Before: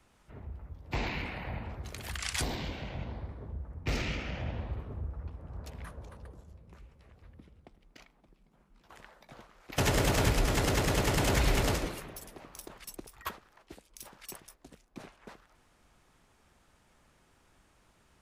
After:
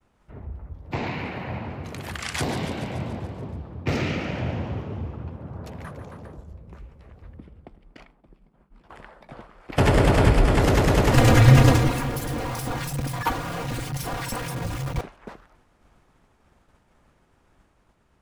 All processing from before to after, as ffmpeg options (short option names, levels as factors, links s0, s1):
-filter_complex "[0:a]asettb=1/sr,asplit=3[s0][s1][s2];[s0]atrim=end=0.914[s3];[s1]atrim=start=0.91:end=6.37,asetpts=PTS-STARTPTS,afade=t=in:d=0.004:c=qsin,afade=t=out:st=5.456:d=0.004:c=qsin,highpass=f=87:w=0.5412,highpass=f=87:w=1.3066,asplit=9[s4][s5][s6][s7][s8][s9][s10][s11][s12];[s5]adelay=143,afreqshift=38,volume=0.299[s13];[s6]adelay=286,afreqshift=76,volume=0.191[s14];[s7]adelay=429,afreqshift=114,volume=0.122[s15];[s8]adelay=572,afreqshift=152,volume=0.0785[s16];[s9]adelay=715,afreqshift=190,volume=0.0501[s17];[s10]adelay=858,afreqshift=228,volume=0.032[s18];[s11]adelay=1001,afreqshift=266,volume=0.0204[s19];[s12]adelay=1144,afreqshift=304,volume=0.0132[s20];[s4][s13][s14][s15][s16][s17][s18][s19][s20]amix=inputs=9:normalize=0,atrim=end_sample=240786[s21];[s2]atrim=start=6.366[s22];[s3][s21]acrossfade=d=0.004:c1=hsin:c2=qsin[s23];[s23][s22]acrossfade=d=0.004:c1=qsin:c2=hsin,asettb=1/sr,asplit=3[s24][s25][s26];[s24]atrim=end=7.374[s27];[s25]atrim=start=7.37:end=10.6,asetpts=PTS-STARTPTS,afade=t=in:d=0.004:c=qsin,afade=t=out:st=3.226:d=0.004:c=qsin,lowpass=f=11000:w=0.5412,lowpass=f=11000:w=1.3066,equalizer=f=6300:w=2.7:g=-7,bandreject=f=3900:w=16[s28];[s26]atrim=start=10.596[s29];[s27][s28]acrossfade=d=0.004:c1=hsin:c2=qsin[s30];[s30][s29]acrossfade=d=0.004:c1=qsin:c2=hsin,asettb=1/sr,asplit=3[s31][s32][s33];[s31]atrim=end=11.124[s34];[s32]atrim=start=11.12:end=15.01,asetpts=PTS-STARTPTS,afade=t=in:d=0.004:c=qsin,afade=t=out:st=3.886:d=0.004:c=qsin,aeval=exprs='val(0)+0.5*0.0158*sgn(val(0))':c=same,aecho=1:1:4.4:0.82,atrim=end_sample=171549,afreqshift=-170[s35];[s33]atrim=start=15.006[s36];[s34][s35]acrossfade=d=0.004:c1=hsin:c2=qsin[s37];[s37][s36]acrossfade=d=0.004:c1=qsin:c2=hsin,agate=range=0.0224:threshold=0.001:ratio=3:detection=peak,highshelf=f=2200:g=-10,dynaudnorm=f=670:g=5:m=1.5,volume=2.24"